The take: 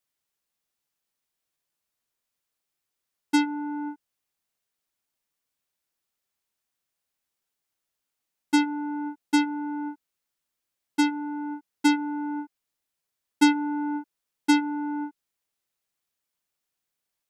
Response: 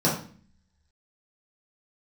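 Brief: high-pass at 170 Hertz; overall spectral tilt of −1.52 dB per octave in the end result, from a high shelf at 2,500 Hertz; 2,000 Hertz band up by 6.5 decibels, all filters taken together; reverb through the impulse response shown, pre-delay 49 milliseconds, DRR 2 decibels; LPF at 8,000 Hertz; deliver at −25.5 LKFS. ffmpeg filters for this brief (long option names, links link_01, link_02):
-filter_complex "[0:a]highpass=170,lowpass=8000,equalizer=frequency=2000:width_type=o:gain=7.5,highshelf=frequency=2500:gain=3.5,asplit=2[link_01][link_02];[1:a]atrim=start_sample=2205,adelay=49[link_03];[link_02][link_03]afir=irnorm=-1:irlink=0,volume=-16.5dB[link_04];[link_01][link_04]amix=inputs=2:normalize=0,volume=-2dB"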